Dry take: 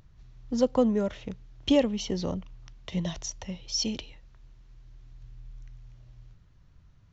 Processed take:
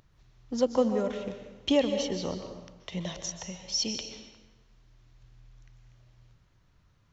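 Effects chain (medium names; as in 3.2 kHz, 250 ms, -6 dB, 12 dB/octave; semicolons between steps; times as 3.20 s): bass shelf 190 Hz -10 dB; plate-style reverb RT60 1.1 s, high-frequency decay 0.8×, pre-delay 115 ms, DRR 6.5 dB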